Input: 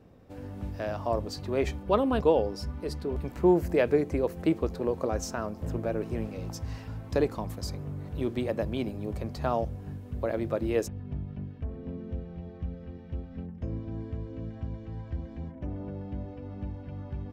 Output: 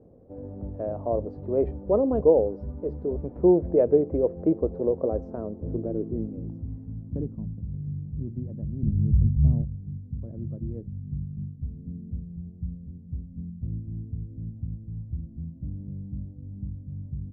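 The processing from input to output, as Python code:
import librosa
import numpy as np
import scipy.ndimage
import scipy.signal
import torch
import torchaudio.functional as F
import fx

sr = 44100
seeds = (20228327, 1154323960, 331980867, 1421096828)

y = fx.filter_sweep_lowpass(x, sr, from_hz=530.0, to_hz=160.0, start_s=5.1, end_s=7.71, q=1.8)
y = fx.riaa(y, sr, side='playback', at=(8.83, 9.62))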